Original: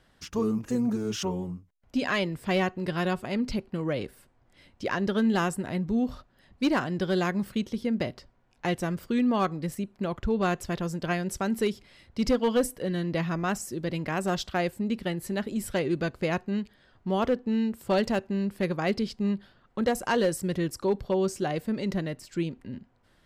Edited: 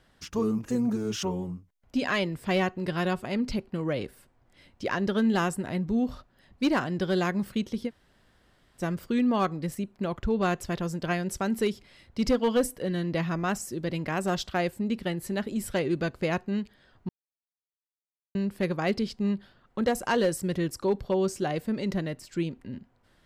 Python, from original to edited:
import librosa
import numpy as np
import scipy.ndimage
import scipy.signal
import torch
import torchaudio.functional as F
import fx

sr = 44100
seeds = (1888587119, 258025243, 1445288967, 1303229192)

y = fx.edit(x, sr, fx.room_tone_fill(start_s=7.88, length_s=0.92, crossfade_s=0.06),
    fx.silence(start_s=17.09, length_s=1.26), tone=tone)